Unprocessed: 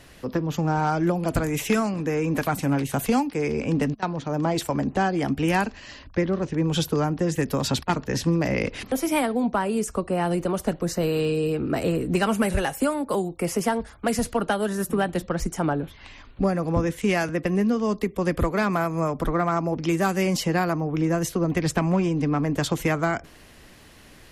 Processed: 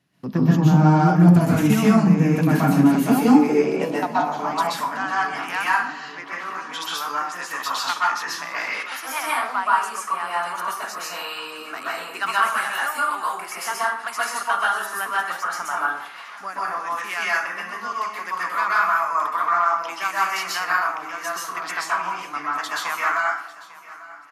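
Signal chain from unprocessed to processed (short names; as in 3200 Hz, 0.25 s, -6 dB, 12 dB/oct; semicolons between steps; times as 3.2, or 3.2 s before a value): gate with hold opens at -37 dBFS; thirty-one-band EQ 200 Hz +5 dB, 500 Hz -9 dB, 8000 Hz -5 dB; in parallel at +0.5 dB: vocal rider 2 s; on the sum: high-pass sweep 150 Hz -> 1200 Hz, 2.37–4.63; on a send: feedback echo 0.847 s, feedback 52%, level -19 dB; on the sum: plate-style reverb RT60 0.62 s, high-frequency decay 0.6×, pre-delay 0.115 s, DRR -6.5 dB; gain -10 dB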